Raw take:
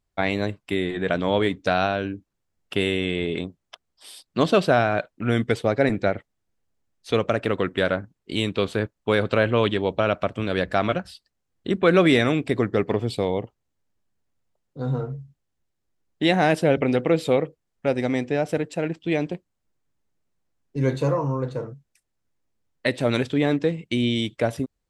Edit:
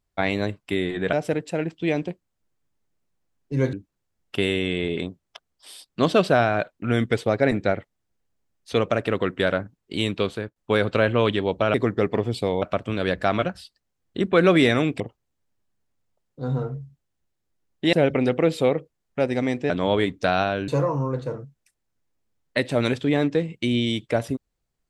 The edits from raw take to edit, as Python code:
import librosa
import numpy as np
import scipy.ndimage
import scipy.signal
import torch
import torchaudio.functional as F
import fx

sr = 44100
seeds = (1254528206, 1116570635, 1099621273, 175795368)

y = fx.edit(x, sr, fx.swap(start_s=1.13, length_s=0.98, other_s=18.37, other_length_s=2.6),
    fx.fade_out_to(start_s=8.57, length_s=0.37, floor_db=-15.5),
    fx.move(start_s=12.5, length_s=0.88, to_s=10.12),
    fx.cut(start_s=16.31, length_s=0.29), tone=tone)